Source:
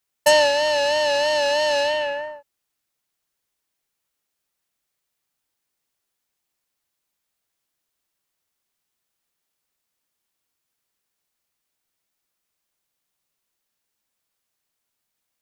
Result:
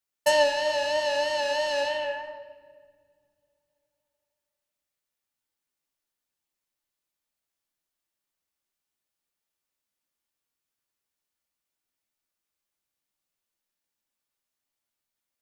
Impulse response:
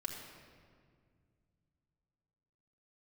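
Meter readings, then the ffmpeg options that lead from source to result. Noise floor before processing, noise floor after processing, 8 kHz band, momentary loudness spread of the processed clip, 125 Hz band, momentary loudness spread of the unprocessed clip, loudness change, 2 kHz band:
−80 dBFS, below −85 dBFS, −7.5 dB, 13 LU, can't be measured, 10 LU, −6.5 dB, −6.0 dB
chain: -filter_complex "[0:a]flanger=delay=8.5:depth=8.2:regen=55:speed=0.74:shape=triangular,asplit=2[link_01][link_02];[1:a]atrim=start_sample=2205[link_03];[link_02][link_03]afir=irnorm=-1:irlink=0,volume=-4dB[link_04];[link_01][link_04]amix=inputs=2:normalize=0,volume=-6.5dB"

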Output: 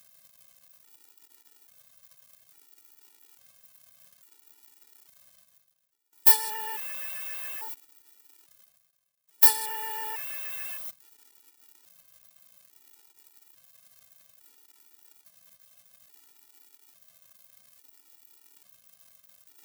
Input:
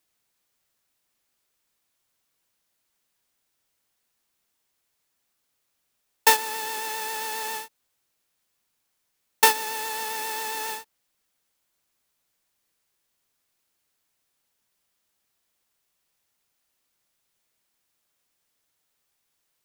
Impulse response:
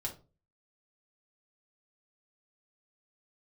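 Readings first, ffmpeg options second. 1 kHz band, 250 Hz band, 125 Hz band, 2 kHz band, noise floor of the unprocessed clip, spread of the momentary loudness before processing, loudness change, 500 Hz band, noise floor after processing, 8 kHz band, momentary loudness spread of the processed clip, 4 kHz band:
−10.0 dB, below −10 dB, can't be measured, −9.5 dB, −76 dBFS, 13 LU, +0.5 dB, −13.5 dB, −69 dBFS, −3.5 dB, 18 LU, −7.0 dB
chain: -filter_complex "[0:a]aeval=exprs='val(0)+0.5*0.0562*sgn(val(0))':channel_layout=same,afwtdn=0.0251,asplit=2[link_01][link_02];[link_02]volume=14dB,asoftclip=hard,volume=-14dB,volume=-6.5dB[link_03];[link_01][link_03]amix=inputs=2:normalize=0,agate=range=-17dB:threshold=-34dB:ratio=16:detection=peak,aemphasis=mode=production:type=riaa,apsyclip=-14dB,bandreject=frequency=6600:width=5.6,acrusher=bits=6:mix=0:aa=0.5,acontrast=32,highpass=65,areverse,acompressor=mode=upward:threshold=-27dB:ratio=2.5,areverse,afftfilt=real='re*gt(sin(2*PI*0.59*pts/sr)*(1-2*mod(floor(b*sr/1024/250),2)),0)':imag='im*gt(sin(2*PI*0.59*pts/sr)*(1-2*mod(floor(b*sr/1024/250),2)),0)':win_size=1024:overlap=0.75,volume=-4dB"

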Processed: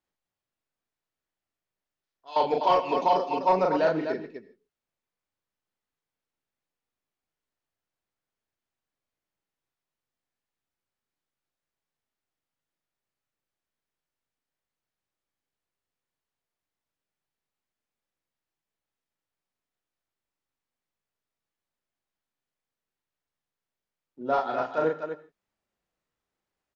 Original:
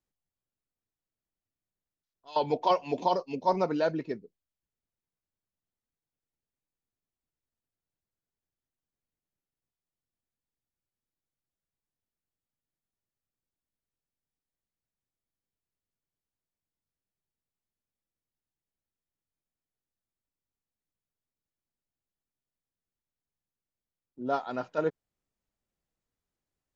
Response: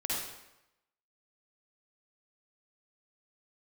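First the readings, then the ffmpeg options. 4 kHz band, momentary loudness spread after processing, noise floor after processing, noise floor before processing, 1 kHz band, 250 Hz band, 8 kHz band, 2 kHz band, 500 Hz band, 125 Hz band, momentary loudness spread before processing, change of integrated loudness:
+3.0 dB, 13 LU, below −85 dBFS, below −85 dBFS, +5.5 dB, +1.5 dB, can't be measured, +6.0 dB, +4.5 dB, −0.5 dB, 9 LU, +4.5 dB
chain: -filter_complex "[0:a]aecho=1:1:37.9|250.7:0.708|0.398,asplit=2[link_01][link_02];[1:a]atrim=start_sample=2205,afade=type=out:start_time=0.2:duration=0.01,atrim=end_sample=9261,adelay=20[link_03];[link_02][link_03]afir=irnorm=-1:irlink=0,volume=-19.5dB[link_04];[link_01][link_04]amix=inputs=2:normalize=0,asplit=2[link_05][link_06];[link_06]highpass=frequency=720:poles=1,volume=11dB,asoftclip=type=tanh:threshold=-10.5dB[link_07];[link_05][link_07]amix=inputs=2:normalize=0,lowpass=frequency=2300:poles=1,volume=-6dB"

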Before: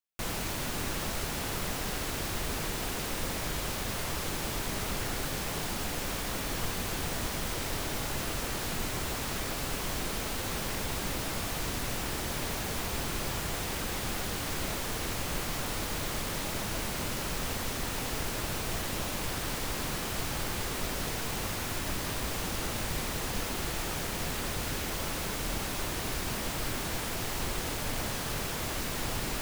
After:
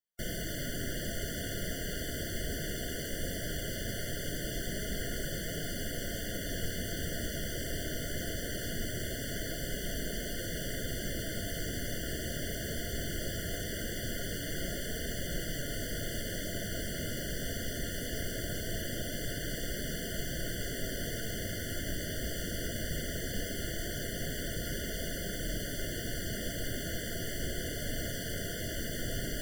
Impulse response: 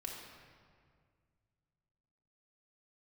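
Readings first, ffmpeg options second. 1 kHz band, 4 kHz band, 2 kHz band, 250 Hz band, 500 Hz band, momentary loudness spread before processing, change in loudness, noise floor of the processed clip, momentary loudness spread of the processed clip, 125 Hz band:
−14.0 dB, −3.5 dB, −3.0 dB, −1.0 dB, −1.5 dB, 0 LU, −3.5 dB, −38 dBFS, 0 LU, −1.5 dB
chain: -af "flanger=delay=4.3:depth=10:regen=-62:speed=0.2:shape=triangular,afftfilt=real='re*eq(mod(floor(b*sr/1024/710),2),0)':imag='im*eq(mod(floor(b*sr/1024/710),2),0)':win_size=1024:overlap=0.75,volume=3dB"

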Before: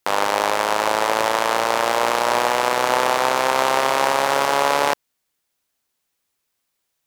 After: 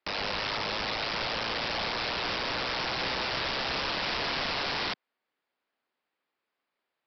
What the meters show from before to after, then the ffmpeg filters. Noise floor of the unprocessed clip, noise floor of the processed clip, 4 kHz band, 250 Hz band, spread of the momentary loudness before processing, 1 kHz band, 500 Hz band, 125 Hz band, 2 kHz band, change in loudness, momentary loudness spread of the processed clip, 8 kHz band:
−76 dBFS, below −85 dBFS, −3.5 dB, −9.0 dB, 2 LU, −16.0 dB, −16.0 dB, −2.5 dB, −9.0 dB, −11.0 dB, 1 LU, −22.0 dB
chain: -filter_complex "[0:a]acrossover=split=360[link_01][link_02];[link_01]acompressor=threshold=-45dB:ratio=2[link_03];[link_03][link_02]amix=inputs=2:normalize=0,aeval=exprs='(tanh(15.8*val(0)+0.55)-tanh(0.55))/15.8':channel_layout=same,acrossover=split=200 2600:gain=0.112 1 0.224[link_04][link_05][link_06];[link_04][link_05][link_06]amix=inputs=3:normalize=0,aresample=11025,aeval=exprs='(mod(23.7*val(0)+1,2)-1)/23.7':channel_layout=same,aresample=44100,volume=2dB"

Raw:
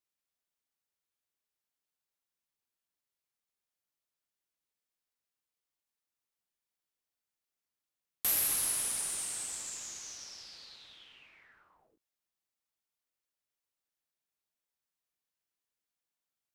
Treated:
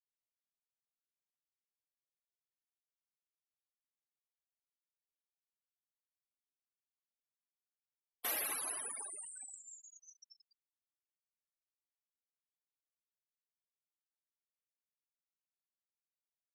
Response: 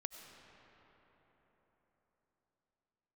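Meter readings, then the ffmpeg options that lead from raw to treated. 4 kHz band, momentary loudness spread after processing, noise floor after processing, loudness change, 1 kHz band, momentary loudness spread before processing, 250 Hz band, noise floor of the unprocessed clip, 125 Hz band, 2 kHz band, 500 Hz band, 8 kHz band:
−10.0 dB, 21 LU, below −85 dBFS, −8.0 dB, −0.5 dB, 20 LU, −5.5 dB, below −85 dBFS, below −15 dB, −2.5 dB, 0.0 dB, −9.5 dB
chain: -filter_complex "[0:a]lowpass=frequency=2600:poles=1,asplit=2[link_01][link_02];[link_02]adelay=519,volume=-16dB,highshelf=frequency=4000:gain=-11.7[link_03];[link_01][link_03]amix=inputs=2:normalize=0,afftfilt=real='re*gte(hypot(re,im),0.01)':imag='im*gte(hypot(re,im),0.01)':win_size=1024:overlap=0.75,highpass=390,volume=4.5dB"

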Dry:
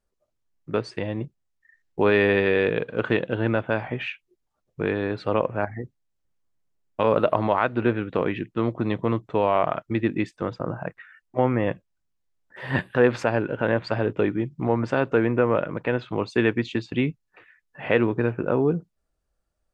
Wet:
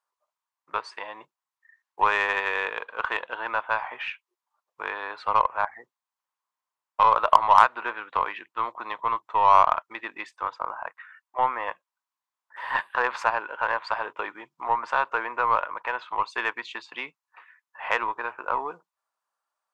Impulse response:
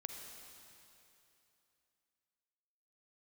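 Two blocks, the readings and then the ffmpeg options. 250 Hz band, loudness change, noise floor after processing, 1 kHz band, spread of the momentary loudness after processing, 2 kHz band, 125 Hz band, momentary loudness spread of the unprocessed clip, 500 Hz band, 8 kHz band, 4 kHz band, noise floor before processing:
−23.0 dB, −1.0 dB, below −85 dBFS, +8.0 dB, 17 LU, +1.0 dB, below −20 dB, 11 LU, −11.0 dB, can't be measured, −0.5 dB, −76 dBFS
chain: -af "highpass=frequency=1000:width_type=q:width=4.9,aeval=exprs='0.794*(cos(1*acos(clip(val(0)/0.794,-1,1)))-cos(1*PI/2))+0.0708*(cos(3*acos(clip(val(0)/0.794,-1,1)))-cos(3*PI/2))+0.00891*(cos(8*acos(clip(val(0)/0.794,-1,1)))-cos(8*PI/2))':channel_layout=same"

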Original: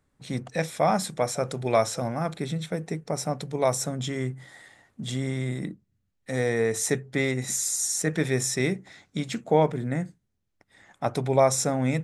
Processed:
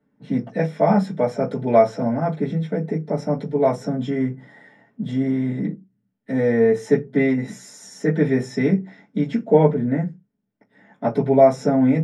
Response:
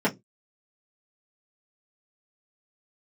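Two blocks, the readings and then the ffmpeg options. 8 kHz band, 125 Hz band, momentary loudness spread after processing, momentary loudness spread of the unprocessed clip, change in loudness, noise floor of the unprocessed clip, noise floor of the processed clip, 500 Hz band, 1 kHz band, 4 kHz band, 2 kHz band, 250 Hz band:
−17.0 dB, +5.0 dB, 11 LU, 11 LU, +6.0 dB, −75 dBFS, −70 dBFS, +7.0 dB, +4.0 dB, −8.5 dB, +0.5 dB, +10.0 dB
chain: -filter_complex "[0:a]lowpass=frequency=4000:poles=1[link_01];[1:a]atrim=start_sample=2205[link_02];[link_01][link_02]afir=irnorm=-1:irlink=0,volume=-11.5dB"

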